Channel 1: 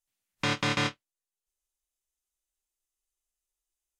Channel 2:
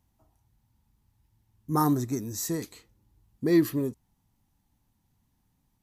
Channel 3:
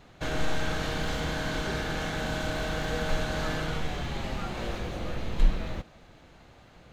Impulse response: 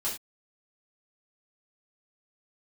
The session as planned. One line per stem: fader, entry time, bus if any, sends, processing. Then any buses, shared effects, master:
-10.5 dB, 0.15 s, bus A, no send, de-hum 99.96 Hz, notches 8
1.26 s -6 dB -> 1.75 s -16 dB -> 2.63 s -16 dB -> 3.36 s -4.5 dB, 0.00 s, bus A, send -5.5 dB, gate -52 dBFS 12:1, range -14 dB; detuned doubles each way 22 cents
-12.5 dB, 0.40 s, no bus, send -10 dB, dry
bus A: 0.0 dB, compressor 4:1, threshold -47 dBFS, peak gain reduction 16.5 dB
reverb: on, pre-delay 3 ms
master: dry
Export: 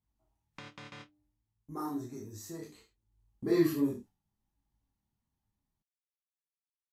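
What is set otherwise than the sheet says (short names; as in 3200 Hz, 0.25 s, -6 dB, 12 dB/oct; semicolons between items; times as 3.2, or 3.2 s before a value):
stem 2 -6.0 dB -> +0.5 dB; stem 3: muted; master: extra high shelf 5200 Hz -5.5 dB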